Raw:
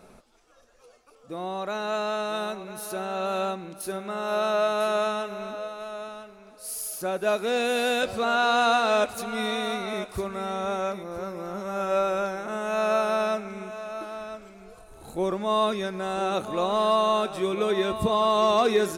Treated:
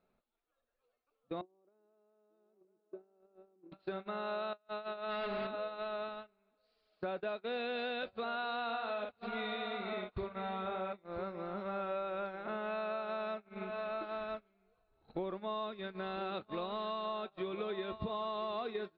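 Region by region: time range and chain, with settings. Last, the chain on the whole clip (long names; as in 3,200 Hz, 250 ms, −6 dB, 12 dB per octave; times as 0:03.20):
0:01.41–0:03.72: downward compressor 3 to 1, threshold −31 dBFS + resonant band-pass 340 Hz, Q 4.1
0:04.53–0:05.47: compressor whose output falls as the input rises −31 dBFS, ratio −0.5 + hard clipping −28.5 dBFS
0:08.64–0:10.93: low-pass filter 4,500 Hz + double-tracking delay 48 ms −4 dB
0:15.77–0:17.05: log-companded quantiser 6 bits + dynamic equaliser 710 Hz, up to −4 dB, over −36 dBFS, Q 1.2 + linear-phase brick-wall low-pass 5,200 Hz
whole clip: elliptic low-pass filter 4,200 Hz, stop band 40 dB; downward compressor 12 to 1, threshold −37 dBFS; noise gate −41 dBFS, range −27 dB; level +1.5 dB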